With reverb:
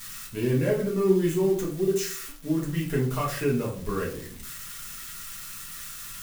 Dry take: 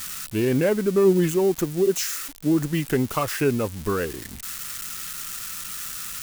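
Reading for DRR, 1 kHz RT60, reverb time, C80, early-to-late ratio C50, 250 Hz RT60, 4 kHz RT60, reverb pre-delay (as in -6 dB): -4.0 dB, 0.40 s, 0.50 s, 12.0 dB, 7.5 dB, 0.55 s, 0.30 s, 4 ms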